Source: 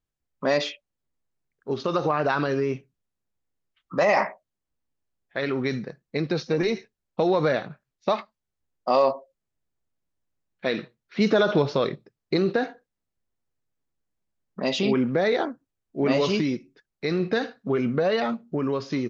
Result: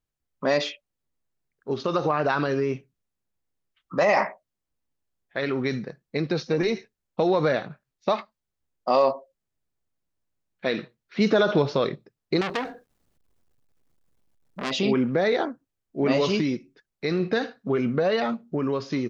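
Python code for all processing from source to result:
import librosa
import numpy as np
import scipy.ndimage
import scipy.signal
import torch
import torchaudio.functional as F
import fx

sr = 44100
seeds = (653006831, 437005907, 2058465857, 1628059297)

y = fx.chain(x, sr, fx.law_mismatch(coded='mu'),
    fx.tilt_shelf(db=3.5, hz=710.0),
    fx.transformer_sat(knee_hz=2700.0), at=(12.41, 14.71))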